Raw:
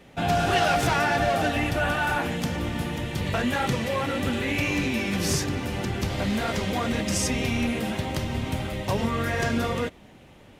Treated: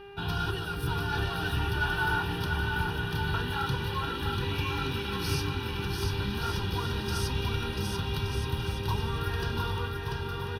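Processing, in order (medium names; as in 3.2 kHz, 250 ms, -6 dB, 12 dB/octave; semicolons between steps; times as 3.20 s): time-frequency box 0.51–1.12 s, 570–6800 Hz -8 dB; mains buzz 400 Hz, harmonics 7, -38 dBFS -6 dB/octave; static phaser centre 2.1 kHz, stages 6; comb 2.1 ms, depth 66%; on a send: bouncing-ball echo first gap 690 ms, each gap 0.7×, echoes 5; on the sum: trim -4.5 dB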